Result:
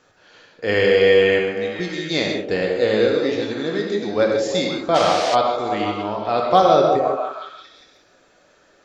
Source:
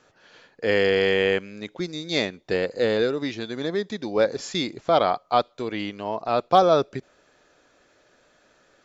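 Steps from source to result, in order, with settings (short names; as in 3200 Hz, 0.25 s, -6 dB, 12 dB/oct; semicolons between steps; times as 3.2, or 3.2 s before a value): delay with a stepping band-pass 0.174 s, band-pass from 390 Hz, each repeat 0.7 oct, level -2.5 dB; non-linear reverb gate 0.18 s flat, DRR 1 dB; 4.94–5.34 band noise 520–5600 Hz -29 dBFS; gain +1 dB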